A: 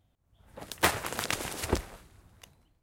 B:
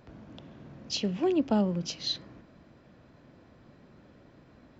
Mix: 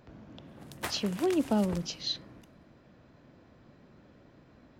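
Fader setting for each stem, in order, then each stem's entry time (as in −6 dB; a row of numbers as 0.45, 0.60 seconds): −11.5, −1.5 decibels; 0.00, 0.00 seconds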